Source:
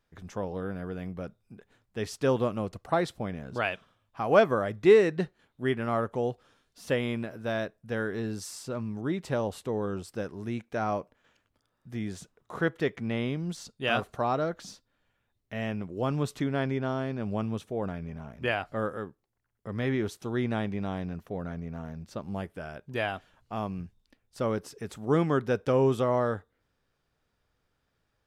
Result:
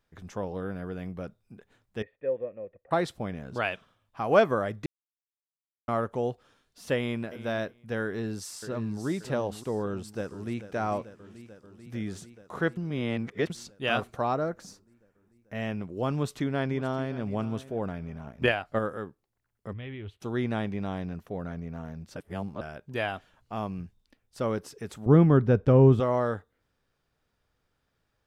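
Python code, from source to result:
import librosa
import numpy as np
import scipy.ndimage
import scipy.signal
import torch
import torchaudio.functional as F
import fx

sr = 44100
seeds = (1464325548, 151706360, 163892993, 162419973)

y = fx.formant_cascade(x, sr, vowel='e', at=(2.02, 2.91))
y = fx.echo_throw(y, sr, start_s=6.96, length_s=0.42, ms=350, feedback_pct=15, wet_db=-15.0)
y = fx.echo_throw(y, sr, start_s=8.04, length_s=1.01, ms=580, feedback_pct=45, wet_db=-9.5)
y = fx.echo_throw(y, sr, start_s=9.87, length_s=0.84, ms=440, feedback_pct=80, wet_db=-13.0)
y = fx.peak_eq(y, sr, hz=3300.0, db=-12.0, octaves=0.86, at=(14.34, 15.55))
y = fx.echo_throw(y, sr, start_s=16.12, length_s=1.14, ms=570, feedback_pct=20, wet_db=-16.0)
y = fx.transient(y, sr, attack_db=8, sustain_db=-5, at=(18.26, 18.79))
y = fx.curve_eq(y, sr, hz=(100.0, 150.0, 1600.0, 3000.0, 5500.0), db=(0, -13, -14, -2, -28), at=(19.72, 20.2), fade=0.02)
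y = fx.riaa(y, sr, side='playback', at=(25.06, 26.0))
y = fx.edit(y, sr, fx.silence(start_s=4.86, length_s=1.02),
    fx.reverse_span(start_s=12.77, length_s=0.73),
    fx.reverse_span(start_s=22.16, length_s=0.45), tone=tone)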